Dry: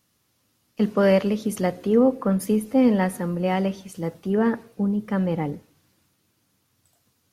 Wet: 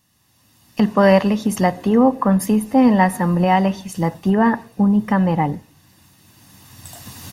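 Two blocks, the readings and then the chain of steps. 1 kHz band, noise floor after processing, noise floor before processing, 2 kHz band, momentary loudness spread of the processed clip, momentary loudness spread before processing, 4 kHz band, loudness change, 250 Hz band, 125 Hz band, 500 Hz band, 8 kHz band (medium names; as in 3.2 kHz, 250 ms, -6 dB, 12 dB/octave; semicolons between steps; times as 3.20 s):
+11.5 dB, -59 dBFS, -69 dBFS, +8.5 dB, 10 LU, 11 LU, +6.5 dB, +6.0 dB, +6.0 dB, +7.0 dB, +3.0 dB, +7.0 dB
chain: recorder AGC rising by 15 dB/s; dynamic bell 940 Hz, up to +6 dB, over -35 dBFS, Q 0.74; comb 1.1 ms, depth 50%; trim +3.5 dB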